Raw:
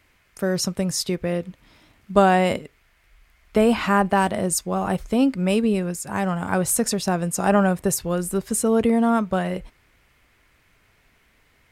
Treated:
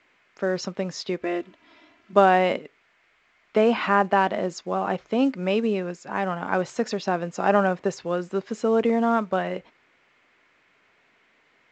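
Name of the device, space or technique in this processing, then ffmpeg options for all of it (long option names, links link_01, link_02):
telephone: -filter_complex "[0:a]asettb=1/sr,asplit=3[link_01][link_02][link_03];[link_01]atrim=end=1.214[link_04];[link_02]atrim=start=1.21:end=2.13,asetpts=PTS-STARTPTS,afade=type=in:duration=0.004:curve=qsin,afade=type=out:start_time=0.916:duration=0.004:curve=qsin,aecho=1:1:3:0.77,atrim=end_sample=40572[link_05];[link_03]atrim=start=2.126[link_06];[link_04][link_05]acrossfade=duration=0.004:curve1=hsin:curve2=qsin[link_07];[link_07][link_06]acrossfade=duration=0.004:curve1=qsin:curve2=hsin,highpass=270,lowpass=3500" -ar 16000 -c:a pcm_mulaw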